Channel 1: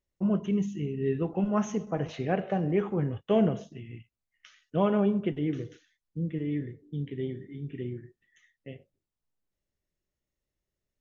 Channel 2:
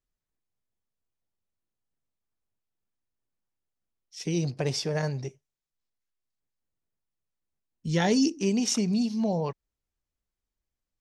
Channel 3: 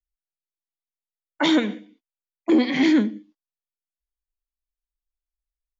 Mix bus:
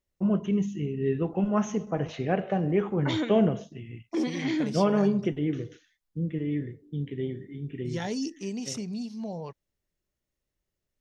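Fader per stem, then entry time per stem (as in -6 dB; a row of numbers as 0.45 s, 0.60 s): +1.5 dB, -8.5 dB, -10.5 dB; 0.00 s, 0.00 s, 1.65 s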